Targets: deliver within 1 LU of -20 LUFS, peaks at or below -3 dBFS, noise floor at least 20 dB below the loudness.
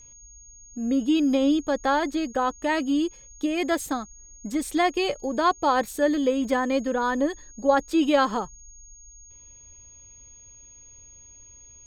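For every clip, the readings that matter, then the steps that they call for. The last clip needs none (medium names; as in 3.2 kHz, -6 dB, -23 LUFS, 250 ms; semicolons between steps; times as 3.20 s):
steady tone 6.6 kHz; tone level -47 dBFS; loudness -24.5 LUFS; peak level -7.5 dBFS; loudness target -20.0 LUFS
-> band-stop 6.6 kHz, Q 30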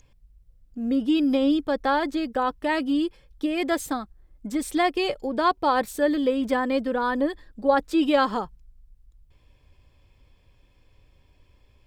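steady tone not found; loudness -24.5 LUFS; peak level -8.0 dBFS; loudness target -20.0 LUFS
-> trim +4.5 dB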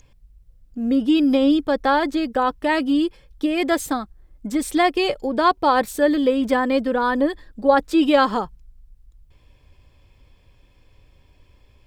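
loudness -20.0 LUFS; peak level -3.5 dBFS; noise floor -56 dBFS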